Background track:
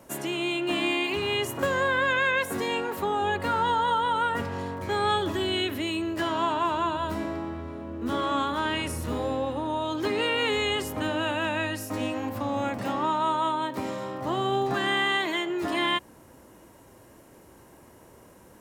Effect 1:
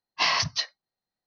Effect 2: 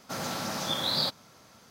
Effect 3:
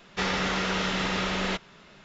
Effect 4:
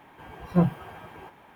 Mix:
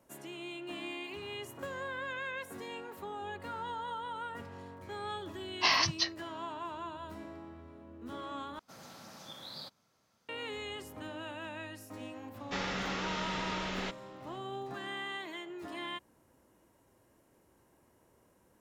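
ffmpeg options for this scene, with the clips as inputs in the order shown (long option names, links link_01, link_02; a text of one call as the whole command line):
ffmpeg -i bed.wav -i cue0.wav -i cue1.wav -i cue2.wav -filter_complex "[0:a]volume=-15dB,asplit=2[link_01][link_02];[link_01]atrim=end=8.594[link_03];[2:a]atrim=end=1.7,asetpts=PTS-STARTPTS,volume=-18dB[link_04];[link_02]atrim=start=10.286[link_05];[1:a]atrim=end=1.26,asetpts=PTS-STARTPTS,volume=-3.5dB,afade=type=in:duration=0.004:curve=hsin,afade=type=out:start_time=1.256:duration=0.004:curve=hsin,adelay=5430[link_06];[3:a]atrim=end=2.04,asetpts=PTS-STARTPTS,volume=-9dB,afade=type=in:duration=0.004:curve=hsin,afade=type=out:start_time=2.036:duration=0.004:curve=hsin,adelay=12340[link_07];[link_03][link_04]acrossfade=duration=0.004:curve1=hsin:curve2=hsin[link_08];[link_08][link_05]acrossfade=duration=0.004:curve1=hsin:curve2=hsin[link_09];[link_09][link_06][link_07]amix=inputs=3:normalize=0" out.wav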